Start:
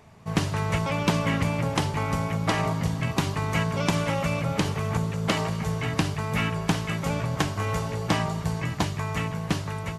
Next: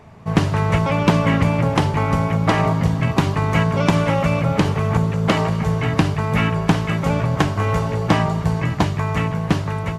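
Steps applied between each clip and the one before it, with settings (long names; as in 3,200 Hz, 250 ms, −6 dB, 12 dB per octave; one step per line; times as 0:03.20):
high-shelf EQ 3,300 Hz −10.5 dB
level +8.5 dB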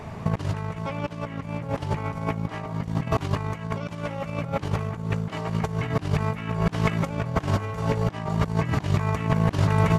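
compressor whose output falls as the input rises −25 dBFS, ratio −0.5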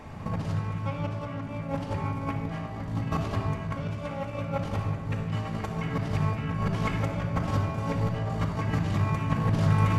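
rectangular room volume 2,600 cubic metres, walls mixed, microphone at 2.2 metres
level −7 dB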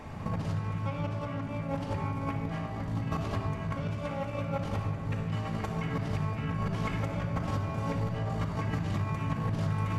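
downward compressor 4 to 1, threshold −28 dBFS, peak gain reduction 9 dB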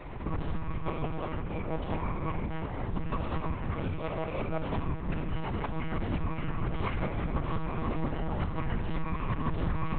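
one-pitch LPC vocoder at 8 kHz 160 Hz
level +1 dB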